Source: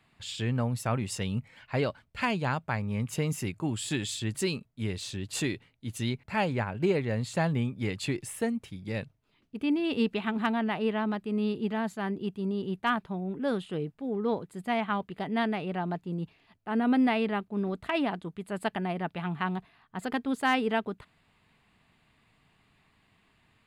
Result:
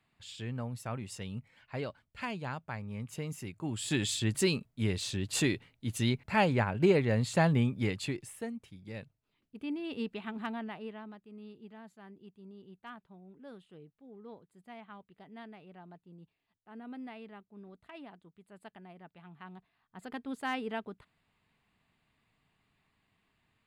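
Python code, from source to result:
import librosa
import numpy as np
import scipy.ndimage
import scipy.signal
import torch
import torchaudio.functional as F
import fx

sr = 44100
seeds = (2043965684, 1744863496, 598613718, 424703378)

y = fx.gain(x, sr, db=fx.line((3.5, -9.0), (4.02, 1.5), (7.78, 1.5), (8.37, -9.5), (10.56, -9.5), (11.25, -20.0), (19.29, -20.0), (20.27, -9.0)))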